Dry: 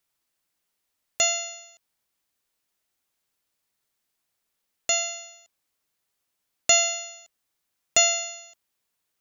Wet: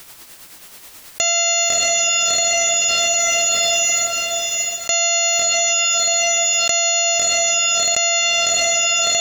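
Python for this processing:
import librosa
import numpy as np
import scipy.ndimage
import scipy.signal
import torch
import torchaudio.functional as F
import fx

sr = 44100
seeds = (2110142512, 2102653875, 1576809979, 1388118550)

p1 = x * (1.0 - 0.46 / 2.0 + 0.46 / 2.0 * np.cos(2.0 * np.pi * 9.3 * (np.arange(len(x)) / sr)))
p2 = p1 + fx.echo_diffused(p1, sr, ms=681, feedback_pct=47, wet_db=-8, dry=0)
y = fx.env_flatten(p2, sr, amount_pct=100)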